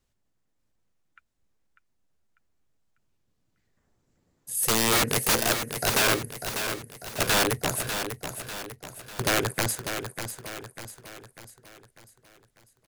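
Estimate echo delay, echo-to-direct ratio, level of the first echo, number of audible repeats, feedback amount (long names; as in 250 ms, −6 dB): 596 ms, −7.0 dB, −8.0 dB, 5, 48%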